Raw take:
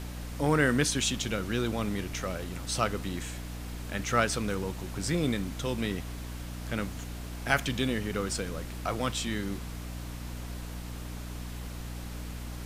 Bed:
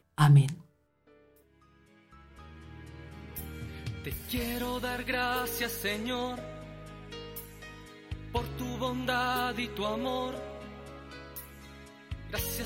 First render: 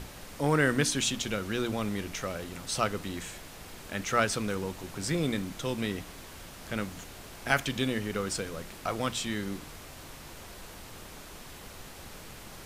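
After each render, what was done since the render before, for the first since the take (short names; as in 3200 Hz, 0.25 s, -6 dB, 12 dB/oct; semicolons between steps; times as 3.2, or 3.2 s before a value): notches 60/120/180/240/300 Hz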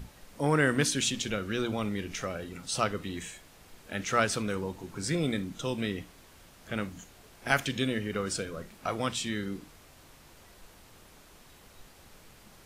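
noise print and reduce 9 dB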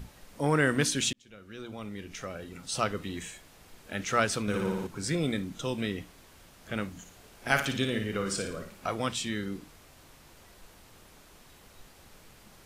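1.13–2.94 fade in; 4.42–4.87 flutter echo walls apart 9.9 m, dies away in 1.2 s; 7–8.86 flutter echo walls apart 9.6 m, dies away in 0.46 s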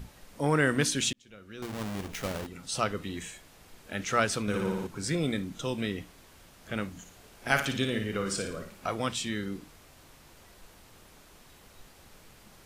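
1.62–2.47 half-waves squared off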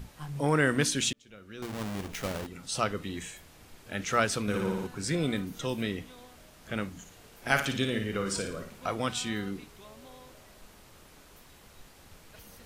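add bed -19.5 dB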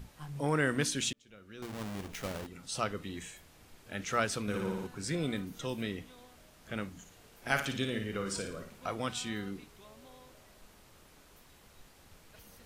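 gain -4.5 dB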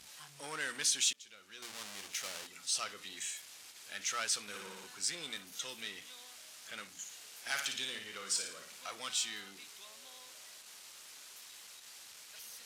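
power-law curve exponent 0.7; band-pass 6300 Hz, Q 0.68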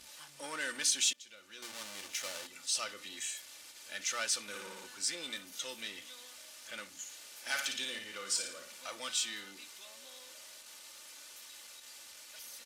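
bell 500 Hz +5 dB 0.3 oct; comb 3.4 ms, depth 52%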